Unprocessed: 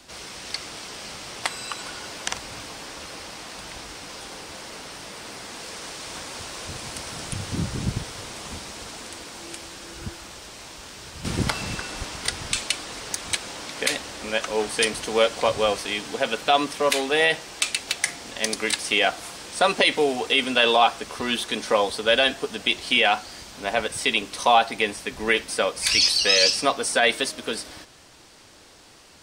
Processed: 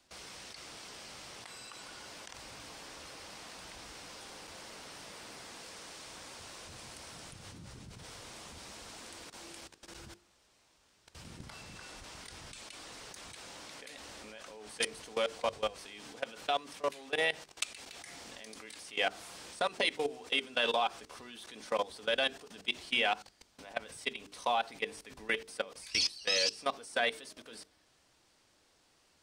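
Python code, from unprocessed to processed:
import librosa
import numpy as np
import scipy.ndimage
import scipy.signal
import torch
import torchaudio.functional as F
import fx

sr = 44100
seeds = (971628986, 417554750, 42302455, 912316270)

y = fx.level_steps(x, sr, step_db=20)
y = fx.hum_notches(y, sr, base_hz=50, count=9)
y = F.gain(torch.from_numpy(y), -9.0).numpy()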